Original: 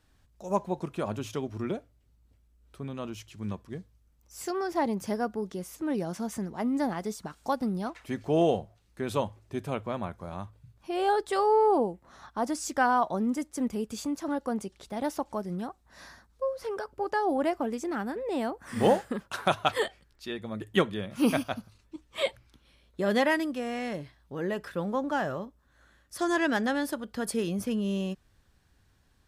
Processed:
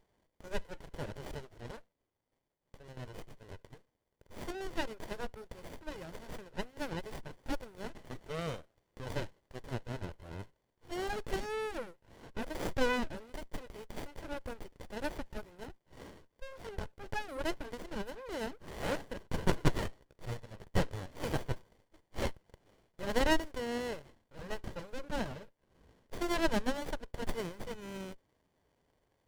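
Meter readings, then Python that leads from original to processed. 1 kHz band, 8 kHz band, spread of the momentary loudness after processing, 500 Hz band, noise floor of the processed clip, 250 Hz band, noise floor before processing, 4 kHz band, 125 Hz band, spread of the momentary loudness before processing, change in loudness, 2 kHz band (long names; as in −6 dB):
−12.0 dB, −8.0 dB, 18 LU, −10.0 dB, −81 dBFS, −11.0 dB, −66 dBFS, −5.0 dB, −3.5 dB, 15 LU, −9.0 dB, −6.5 dB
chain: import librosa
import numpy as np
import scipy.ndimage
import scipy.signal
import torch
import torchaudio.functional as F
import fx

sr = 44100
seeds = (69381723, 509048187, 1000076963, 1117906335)

y = scipy.signal.sosfilt(scipy.signal.cheby1(2, 1.0, 1500.0, 'highpass', fs=sr, output='sos'), x)
y = y + 0.66 * np.pad(y, (int(2.0 * sr / 1000.0), 0))[:len(y)]
y = fx.running_max(y, sr, window=33)
y = y * 10.0 ** (4.0 / 20.0)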